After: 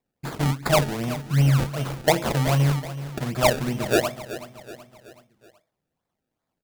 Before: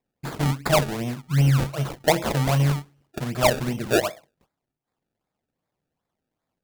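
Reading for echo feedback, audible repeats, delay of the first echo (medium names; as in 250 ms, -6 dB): 47%, 4, 376 ms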